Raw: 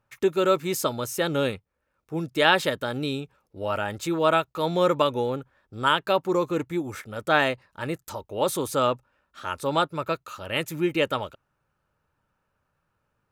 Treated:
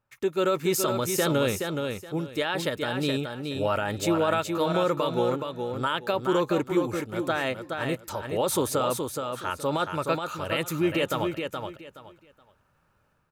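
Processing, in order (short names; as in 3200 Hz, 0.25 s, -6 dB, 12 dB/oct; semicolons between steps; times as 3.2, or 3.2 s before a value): AGC gain up to 11.5 dB; limiter -10.5 dBFS, peak gain reduction 9.5 dB; on a send: feedback echo 0.422 s, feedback 23%, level -5.5 dB; on the sum: gain -5.5 dB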